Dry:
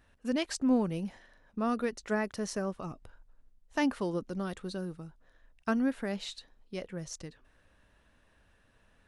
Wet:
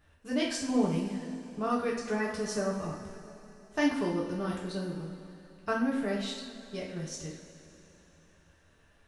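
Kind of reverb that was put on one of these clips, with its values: two-slope reverb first 0.54 s, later 3.5 s, from -15 dB, DRR -4.5 dB; gain -3.5 dB

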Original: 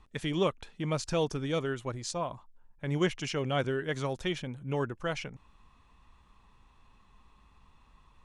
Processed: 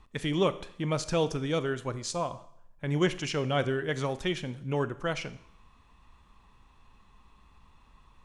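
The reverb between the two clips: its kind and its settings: Schroeder reverb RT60 0.7 s, combs from 27 ms, DRR 14 dB; gain +2 dB

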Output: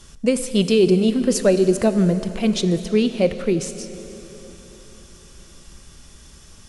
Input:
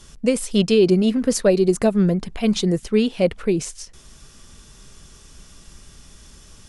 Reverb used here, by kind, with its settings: plate-style reverb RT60 4 s, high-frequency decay 0.95×, DRR 10 dB

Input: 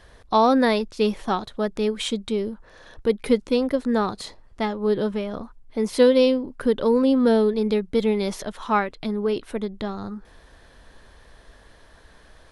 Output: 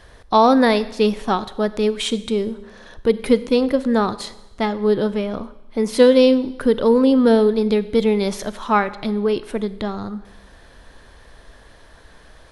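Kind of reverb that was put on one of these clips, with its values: Schroeder reverb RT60 1 s, combs from 31 ms, DRR 15 dB; gain +4 dB

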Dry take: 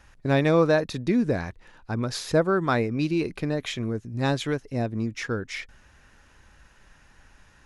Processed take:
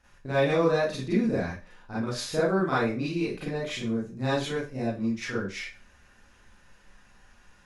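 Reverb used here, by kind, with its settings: Schroeder reverb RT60 0.31 s, combs from 31 ms, DRR -9.5 dB; gain -11.5 dB

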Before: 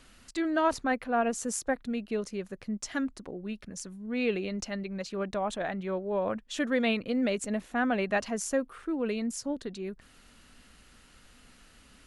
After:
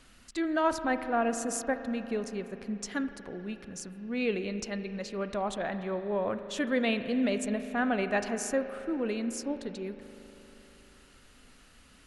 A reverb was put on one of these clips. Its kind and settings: spring tank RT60 3.7 s, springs 39 ms, chirp 45 ms, DRR 9.5 dB; gain -1 dB

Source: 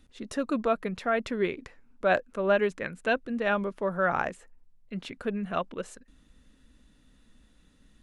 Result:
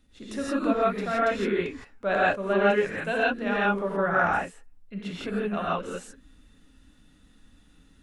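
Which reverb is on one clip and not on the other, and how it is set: non-linear reverb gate 0.19 s rising, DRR -7.5 dB; gain -4.5 dB

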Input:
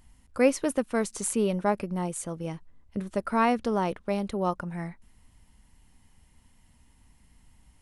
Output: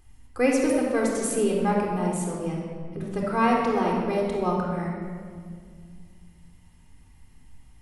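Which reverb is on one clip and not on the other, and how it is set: shoebox room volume 3500 m³, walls mixed, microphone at 3.8 m; gain -2.5 dB

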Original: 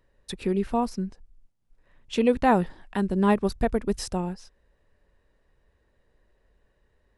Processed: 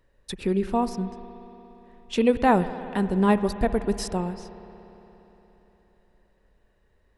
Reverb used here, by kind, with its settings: spring tank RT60 3.8 s, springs 58 ms, chirp 55 ms, DRR 12 dB; gain +1 dB

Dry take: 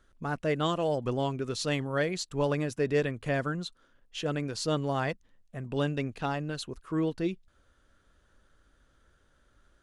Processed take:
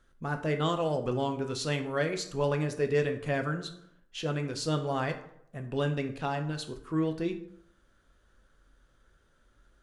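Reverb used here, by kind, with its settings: plate-style reverb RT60 0.71 s, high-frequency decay 0.6×, DRR 5.5 dB; gain -1.5 dB

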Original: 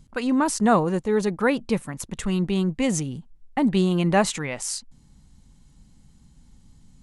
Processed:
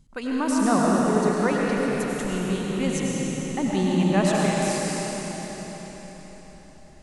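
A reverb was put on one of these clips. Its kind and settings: digital reverb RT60 4.9 s, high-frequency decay 0.95×, pre-delay 55 ms, DRR -4.5 dB; gain -5.5 dB

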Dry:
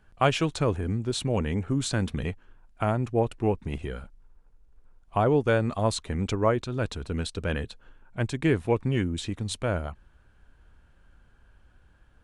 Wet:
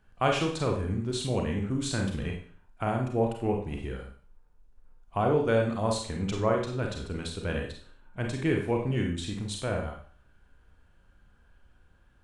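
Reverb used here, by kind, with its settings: Schroeder reverb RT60 0.46 s, combs from 31 ms, DRR 1 dB; gain -4.5 dB

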